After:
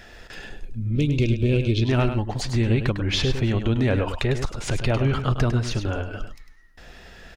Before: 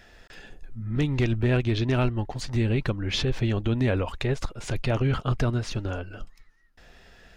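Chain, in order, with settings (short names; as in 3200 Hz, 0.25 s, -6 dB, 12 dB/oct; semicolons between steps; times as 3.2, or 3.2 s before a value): spectral gain 0.64–1.83, 610–2100 Hz -16 dB; in parallel at +2 dB: compressor, threshold -33 dBFS, peak gain reduction 13 dB; on the sum: echo 0.102 s -8.5 dB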